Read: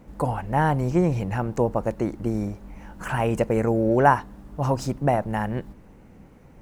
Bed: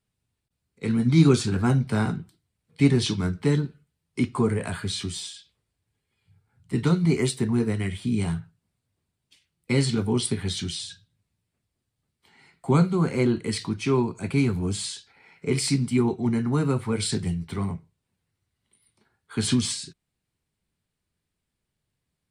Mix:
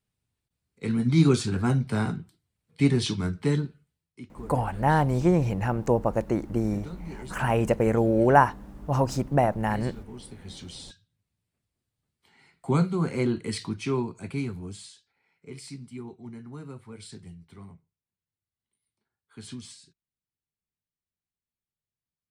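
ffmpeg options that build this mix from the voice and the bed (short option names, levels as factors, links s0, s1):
-filter_complex "[0:a]adelay=4300,volume=0.944[s0];[1:a]volume=4.47,afade=t=out:st=3.9:d=0.27:silence=0.149624,afade=t=in:st=10.33:d=1.15:silence=0.16788,afade=t=out:st=13.71:d=1.3:silence=0.199526[s1];[s0][s1]amix=inputs=2:normalize=0"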